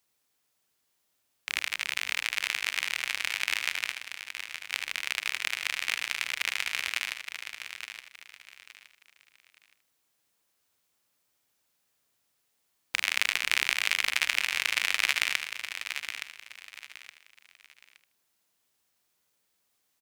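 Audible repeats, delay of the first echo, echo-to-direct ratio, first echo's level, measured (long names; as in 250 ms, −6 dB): 8, 77 ms, −6.0 dB, −10.5 dB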